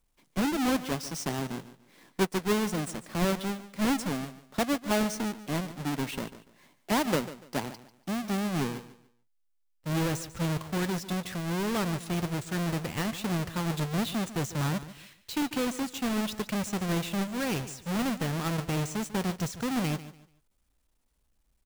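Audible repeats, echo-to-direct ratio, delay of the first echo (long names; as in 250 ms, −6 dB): 2, −14.5 dB, 145 ms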